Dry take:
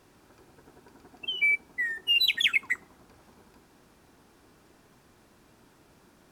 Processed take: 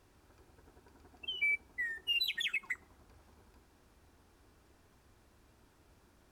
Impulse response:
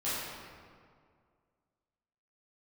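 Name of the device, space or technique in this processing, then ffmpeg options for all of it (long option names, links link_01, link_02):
car stereo with a boomy subwoofer: -filter_complex "[0:a]asettb=1/sr,asplit=3[link_01][link_02][link_03];[link_01]atrim=end=2.124[link_04];[link_02]atrim=start=2.12:end=2.72,asetpts=PTS-STARTPTS,afade=type=in:duration=0.004:curve=qsin,afade=type=out:start_time=0.596:duration=0.004:curve=qsin,aecho=1:1:5.5:0.93,atrim=end_sample=26460[link_05];[link_03]atrim=start=2.716[link_06];[link_04][link_05]acrossfade=duration=0.004:curve1=hsin:curve2=qsin[link_07];[link_07][link_06]acrossfade=duration=0.004:curve1=qsin:curve2=hsin,lowshelf=frequency=110:width_type=q:width=1.5:gain=8,alimiter=limit=-18.5dB:level=0:latency=1:release=123,volume=-7.5dB"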